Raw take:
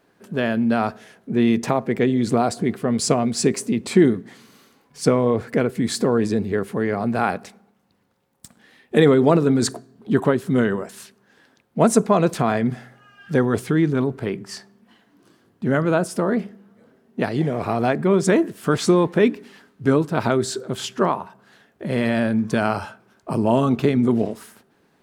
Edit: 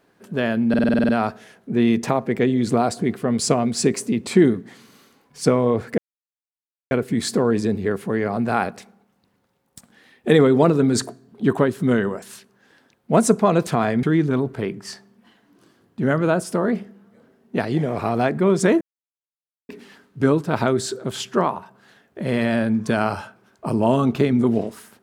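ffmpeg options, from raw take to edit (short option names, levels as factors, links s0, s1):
-filter_complex "[0:a]asplit=13[s0][s1][s2][s3][s4][s5][s6][s7][s8][s9][s10][s11][s12];[s0]atrim=end=0.742[s13];[s1]atrim=start=0.688:end=0.742[s14];[s2]atrim=start=0.688:end=0.742[s15];[s3]atrim=start=0.688:end=0.742[s16];[s4]atrim=start=0.688:end=0.742[s17];[s5]atrim=start=0.688:end=0.742[s18];[s6]atrim=start=0.688:end=0.742[s19];[s7]atrim=start=0.688:end=0.742[s20];[s8]atrim=start=0.688:end=5.58,asetpts=PTS-STARTPTS,afade=t=out:st=4.888:d=0.004:c=hsin,apad=pad_dur=0.93[s21];[s9]atrim=start=5.58:end=12.702,asetpts=PTS-STARTPTS,afade=t=in:d=0.004:c=hsin[s22];[s10]atrim=start=13.668:end=18.45,asetpts=PTS-STARTPTS,afade=t=out:st=4.778:d=0.004:c=hsin[s23];[s11]atrim=start=18.45:end=19.33,asetpts=PTS-STARTPTS,volume=0[s24];[s12]atrim=start=19.33,asetpts=PTS-STARTPTS,afade=t=in:d=0.004:c=hsin[s25];[s13][s14]acrossfade=d=0.004:c1=hsin:c2=hsin[s26];[s26][s15]acrossfade=d=0.004:c1=hsin:c2=hsin[s27];[s27][s16]acrossfade=d=0.004:c1=hsin:c2=hsin[s28];[s28][s17]acrossfade=d=0.004:c1=hsin:c2=hsin[s29];[s29][s18]acrossfade=d=0.004:c1=hsin:c2=hsin[s30];[s30][s19]acrossfade=d=0.004:c1=hsin:c2=hsin[s31];[s31][s20]acrossfade=d=0.004:c1=hsin:c2=hsin[s32];[s21][s22]concat=n=2:v=0:a=1[s33];[s32][s33]acrossfade=d=0.004:c1=hsin:c2=hsin[s34];[s23][s24][s25]concat=n=3:v=0:a=1[s35];[s34][s35]acrossfade=d=0.004:c1=hsin:c2=hsin"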